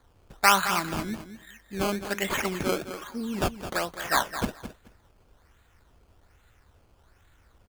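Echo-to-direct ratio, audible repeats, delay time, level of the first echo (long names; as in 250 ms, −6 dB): −11.0 dB, 2, 214 ms, −11.0 dB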